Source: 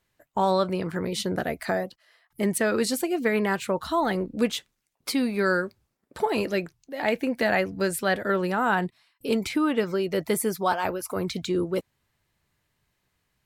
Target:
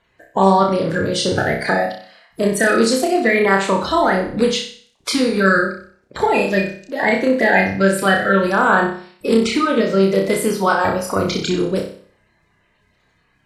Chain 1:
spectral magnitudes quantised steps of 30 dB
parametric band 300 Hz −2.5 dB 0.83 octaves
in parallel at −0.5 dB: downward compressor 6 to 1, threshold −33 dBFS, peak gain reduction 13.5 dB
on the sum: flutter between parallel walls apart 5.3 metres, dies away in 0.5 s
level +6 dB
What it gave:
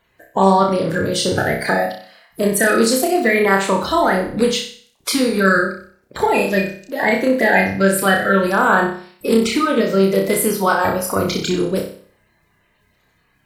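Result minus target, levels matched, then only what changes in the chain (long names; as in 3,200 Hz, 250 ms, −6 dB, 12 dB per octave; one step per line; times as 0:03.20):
8,000 Hz band +4.0 dB
add after spectral magnitudes quantised: low-pass filter 7,700 Hz 12 dB per octave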